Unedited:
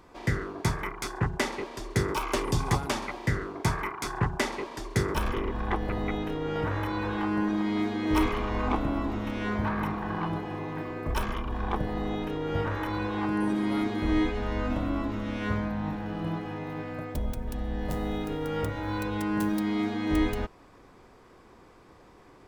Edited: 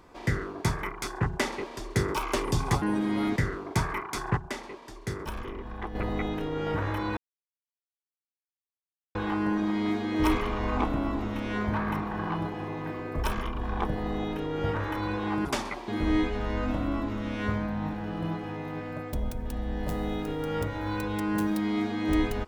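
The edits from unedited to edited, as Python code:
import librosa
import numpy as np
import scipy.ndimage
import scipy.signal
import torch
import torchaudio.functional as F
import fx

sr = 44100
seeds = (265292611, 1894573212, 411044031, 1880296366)

y = fx.edit(x, sr, fx.swap(start_s=2.82, length_s=0.43, other_s=13.36, other_length_s=0.54),
    fx.clip_gain(start_s=4.26, length_s=1.58, db=-7.5),
    fx.insert_silence(at_s=7.06, length_s=1.98), tone=tone)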